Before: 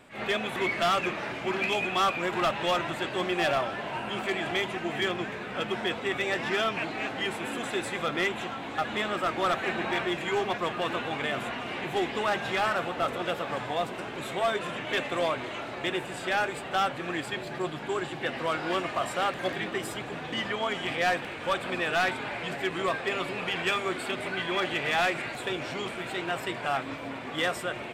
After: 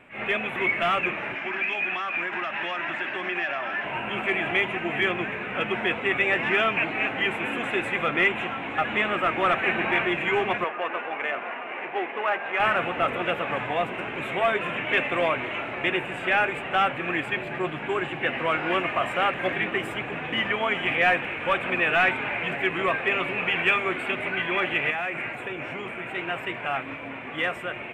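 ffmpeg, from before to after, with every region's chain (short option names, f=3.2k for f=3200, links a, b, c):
-filter_complex "[0:a]asettb=1/sr,asplit=3[a][b][c];[a]atrim=end=1.354[d];[b]atrim=start=1.35:end=3.85,asetpts=PTS-STARTPTS,afade=t=in:d=0.004:c=qsin,afade=t=out:st=2.496:d=0.004:c=qsin,highpass=240,equalizer=f=480:t=q:w=4:g=-9,equalizer=f=1.7k:t=q:w=4:g=7,equalizer=f=5.3k:t=q:w=4:g=8,lowpass=f=7.3k:w=0.5412,lowpass=f=7.3k:w=1.3066,acompressor=threshold=-28dB:ratio=6:attack=3.2:release=140:knee=1:detection=peak[e];[c]atrim=start=3.846[f];[d][e]acrossfade=d=0.004:c1=hsin:c2=qsin[g];[g][f]acrossfade=d=0.004:c1=qsin:c2=hsin,asettb=1/sr,asplit=3[h][i][j];[h]atrim=end=10.644[k];[i]atrim=start=10.64:end=12.6,asetpts=PTS-STARTPTS,afade=t=in:d=0.004:c=qsin,afade=t=out:st=1.956:d=0.004:c=qsin,highshelf=f=3.6k:g=-5.5,adynamicsmooth=sensitivity=1.5:basefreq=1.8k,highpass=480[l];[j]atrim=start=12.596[m];[k][l]acrossfade=d=0.004:c1=hsin:c2=qsin[n];[n][m]acrossfade=d=0.004:c1=qsin:c2=hsin,asettb=1/sr,asplit=3[o][p][q];[o]atrim=end=24.904[r];[p]atrim=start=24.9:end=26.15,asetpts=PTS-STARTPTS,afade=t=in:d=0.004:c=qsin,afade=t=out:st=1.246:d=0.004:c=qsin,equalizer=f=3.9k:t=o:w=1:g=-5.5,acompressor=threshold=-30dB:ratio=4:attack=3.2:release=140:knee=1:detection=peak,highpass=55[s];[q]atrim=start=26.146[t];[r][s]acrossfade=d=0.004:c1=hsin:c2=qsin[u];[u][t]acrossfade=d=0.004:c1=qsin:c2=hsin,highshelf=f=3.4k:t=q:w=3:g=-10.5,dynaudnorm=f=470:g=17:m=3dB"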